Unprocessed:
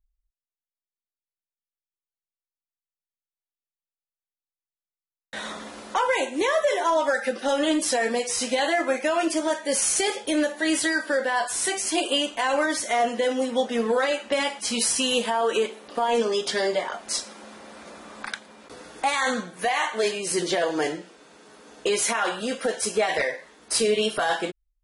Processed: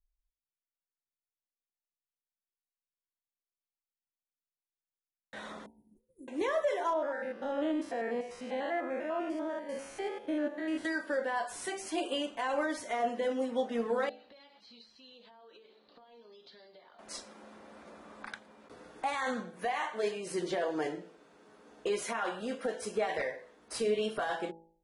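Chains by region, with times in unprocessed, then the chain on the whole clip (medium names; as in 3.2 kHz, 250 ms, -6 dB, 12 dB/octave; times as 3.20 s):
5.66–6.28 s: inverse Chebyshev band-stop 770–4700 Hz, stop band 60 dB + expander -42 dBFS
6.93–10.85 s: spectrogram pixelated in time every 100 ms + tone controls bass -1 dB, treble -13 dB
14.09–16.99 s: compression 8:1, threshold -33 dBFS + four-pole ladder low-pass 4.4 kHz, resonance 80%
whole clip: treble shelf 2.4 kHz -11 dB; de-hum 55.11 Hz, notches 17; trim -7 dB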